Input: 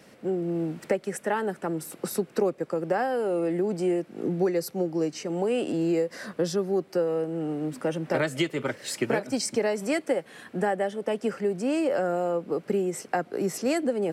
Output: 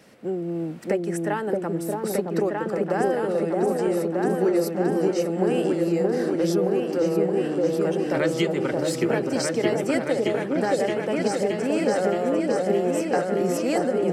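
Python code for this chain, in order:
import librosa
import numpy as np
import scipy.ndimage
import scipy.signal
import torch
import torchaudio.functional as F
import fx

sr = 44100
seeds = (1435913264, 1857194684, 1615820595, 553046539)

y = fx.echo_opening(x, sr, ms=621, hz=750, octaves=2, feedback_pct=70, wet_db=0)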